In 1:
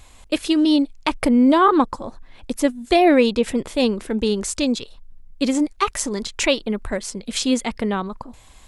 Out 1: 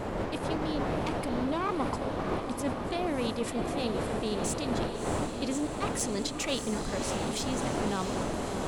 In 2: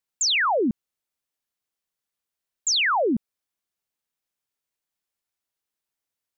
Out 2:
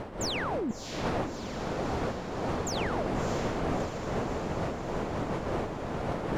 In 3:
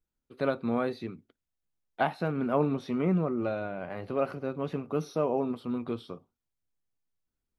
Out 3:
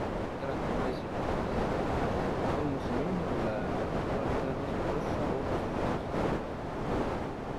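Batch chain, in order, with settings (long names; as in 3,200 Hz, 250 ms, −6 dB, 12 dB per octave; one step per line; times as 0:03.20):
one-sided soft clipper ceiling −13.5 dBFS
wind on the microphone 620 Hz −21 dBFS
high-shelf EQ 5,200 Hz +5 dB
reversed playback
downward compressor 6 to 1, threshold −30 dBFS
reversed playback
feedback delay with all-pass diffusion 651 ms, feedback 69%, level −7 dB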